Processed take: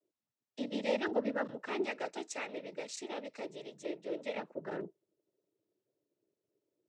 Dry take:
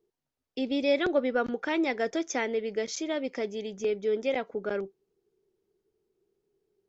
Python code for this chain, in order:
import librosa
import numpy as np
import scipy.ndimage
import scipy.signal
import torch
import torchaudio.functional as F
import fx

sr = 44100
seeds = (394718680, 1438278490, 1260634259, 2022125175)

y = fx.highpass(x, sr, hz=480.0, slope=6, at=(1.81, 4.35))
y = fx.noise_vocoder(y, sr, seeds[0], bands=12)
y = y * 10.0 ** (-7.5 / 20.0)